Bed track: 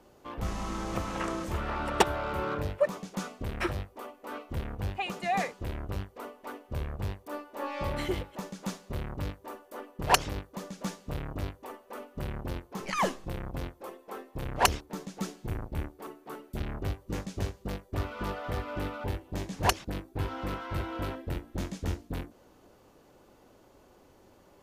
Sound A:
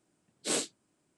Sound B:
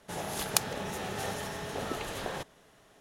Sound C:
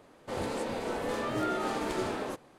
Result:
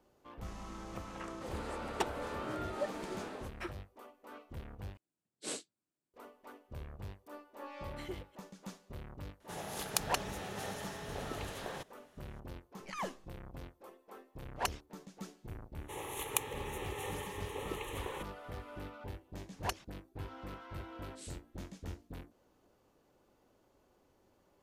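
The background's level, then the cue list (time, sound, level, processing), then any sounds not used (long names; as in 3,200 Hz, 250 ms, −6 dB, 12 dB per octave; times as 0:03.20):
bed track −11.5 dB
0:01.13: mix in C −10 dB
0:04.97: overwrite with A −9.5 dB + expander for the loud parts, over −49 dBFS
0:09.40: mix in B −6.5 dB
0:15.80: mix in B −2.5 dB + phaser with its sweep stopped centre 1,000 Hz, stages 8
0:20.71: mix in A −5 dB + guitar amp tone stack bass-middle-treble 6-0-2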